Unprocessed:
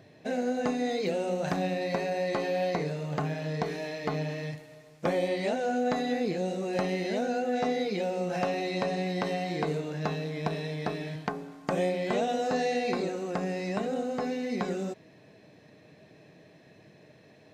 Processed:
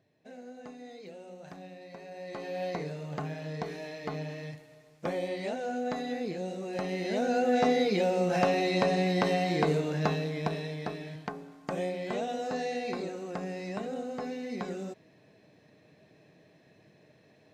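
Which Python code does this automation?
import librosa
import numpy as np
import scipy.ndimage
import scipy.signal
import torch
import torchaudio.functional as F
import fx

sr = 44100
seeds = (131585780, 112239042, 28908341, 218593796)

y = fx.gain(x, sr, db=fx.line((1.96, -17.0), (2.65, -5.0), (6.79, -5.0), (7.44, 3.5), (9.98, 3.5), (11.01, -5.0)))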